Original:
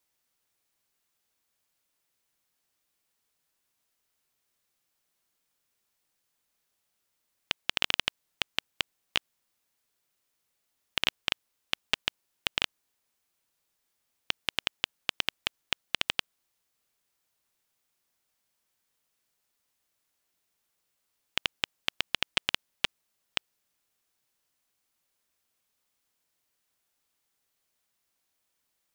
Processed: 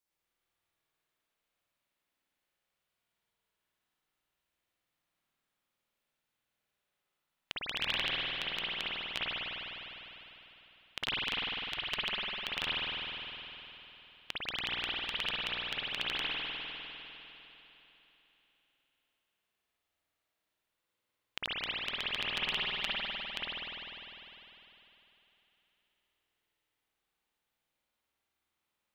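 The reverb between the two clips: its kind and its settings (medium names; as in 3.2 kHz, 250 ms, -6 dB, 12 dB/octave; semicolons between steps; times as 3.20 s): spring tank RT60 3.5 s, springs 50 ms, chirp 25 ms, DRR -9.5 dB; trim -11 dB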